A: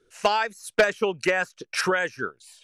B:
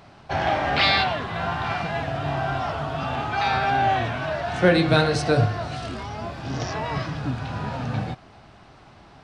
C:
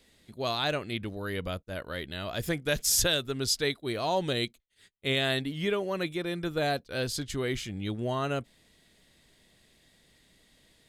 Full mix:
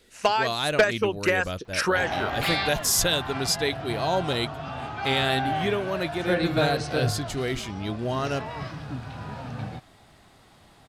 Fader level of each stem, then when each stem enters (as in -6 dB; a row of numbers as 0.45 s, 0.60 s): -0.5 dB, -7.0 dB, +2.5 dB; 0.00 s, 1.65 s, 0.00 s